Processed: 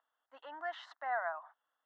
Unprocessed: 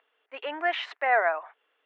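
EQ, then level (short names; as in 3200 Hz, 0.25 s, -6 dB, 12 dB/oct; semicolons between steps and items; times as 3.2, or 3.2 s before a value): dynamic EQ 470 Hz, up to -4 dB, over -36 dBFS, Q 0.75; fixed phaser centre 1000 Hz, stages 4; -7.5 dB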